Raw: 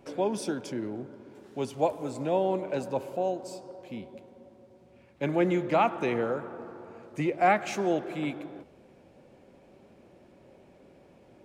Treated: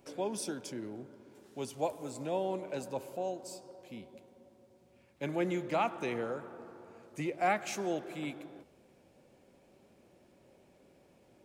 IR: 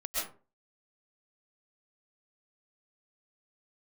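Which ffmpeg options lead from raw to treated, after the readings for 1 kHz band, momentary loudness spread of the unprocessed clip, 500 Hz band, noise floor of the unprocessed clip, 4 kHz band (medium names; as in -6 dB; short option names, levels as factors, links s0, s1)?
-7.0 dB, 18 LU, -7.5 dB, -58 dBFS, -3.0 dB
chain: -af "highshelf=f=4700:g=11.5,volume=0.422"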